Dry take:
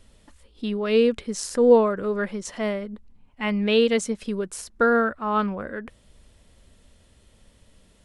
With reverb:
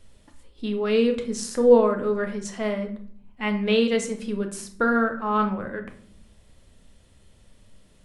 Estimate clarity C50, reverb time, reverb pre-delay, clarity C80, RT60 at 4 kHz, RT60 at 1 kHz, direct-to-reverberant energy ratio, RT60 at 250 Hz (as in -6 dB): 10.5 dB, 0.60 s, 9 ms, 14.5 dB, 0.40 s, 0.55 s, 4.5 dB, 1.1 s